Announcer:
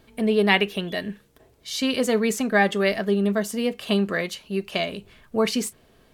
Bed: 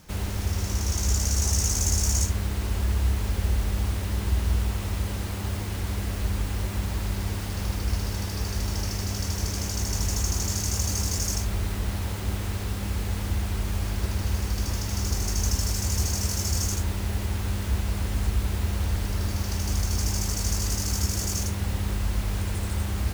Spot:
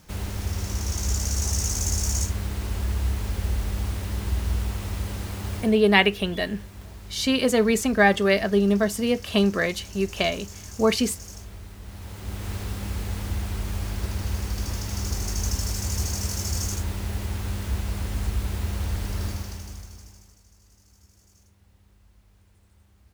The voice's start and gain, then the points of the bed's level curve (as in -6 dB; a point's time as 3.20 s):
5.45 s, +1.5 dB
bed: 5.59 s -1.5 dB
5.80 s -13.5 dB
11.79 s -13.5 dB
12.52 s -1.5 dB
19.28 s -1.5 dB
20.46 s -31 dB